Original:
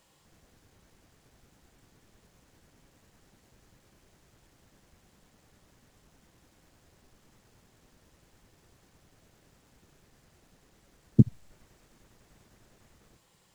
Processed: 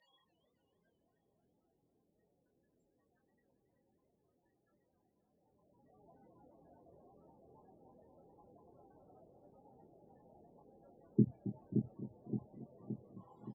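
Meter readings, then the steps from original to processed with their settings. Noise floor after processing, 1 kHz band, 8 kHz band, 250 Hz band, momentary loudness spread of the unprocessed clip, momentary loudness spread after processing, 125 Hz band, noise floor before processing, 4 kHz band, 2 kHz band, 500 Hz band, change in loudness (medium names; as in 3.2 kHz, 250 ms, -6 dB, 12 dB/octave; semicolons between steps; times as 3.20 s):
-81 dBFS, +1.0 dB, no reading, -6.5 dB, 4 LU, 20 LU, -11.0 dB, -66 dBFS, under -15 dB, under -15 dB, -1.5 dB, -15.0 dB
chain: peak limiter -14 dBFS, peak gain reduction 9.5 dB; loudest bins only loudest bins 16; band-pass sweep 3.6 kHz -> 840 Hz, 5.28–6.00 s; doubling 24 ms -5.5 dB; on a send: feedback echo behind a low-pass 571 ms, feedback 55%, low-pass 670 Hz, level -5 dB; on the sum: modulated delay 269 ms, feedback 57%, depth 180 cents, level -13 dB; trim +16 dB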